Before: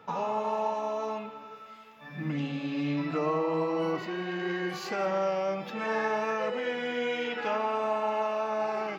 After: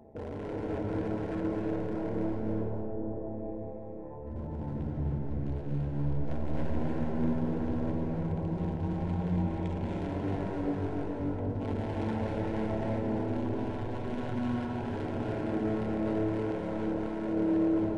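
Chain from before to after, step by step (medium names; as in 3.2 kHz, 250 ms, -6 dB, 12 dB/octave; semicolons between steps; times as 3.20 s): local Wiener filter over 15 samples; dynamic bell 190 Hz, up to +7 dB, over -51 dBFS, Q 2.9; in parallel at -0.5 dB: compression, threshold -44 dBFS, peak gain reduction 18 dB; on the sum: AM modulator 290 Hz, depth 95%; overload inside the chain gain 34 dB; on a send: bucket-brigade echo 252 ms, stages 4096, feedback 66%, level -12 dB; on the sum: algorithmic reverb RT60 1.8 s, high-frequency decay 0.4×, pre-delay 90 ms, DRR -3 dB; speed mistake 15 ips tape played at 7.5 ips; Butterworth band-stop 1.2 kHz, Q 6.1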